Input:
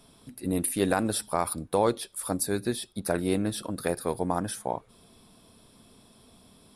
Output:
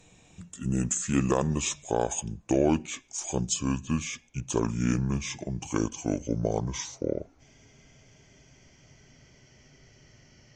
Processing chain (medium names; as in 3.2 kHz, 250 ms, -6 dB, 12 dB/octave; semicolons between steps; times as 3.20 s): gliding tape speed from 71% -> 57%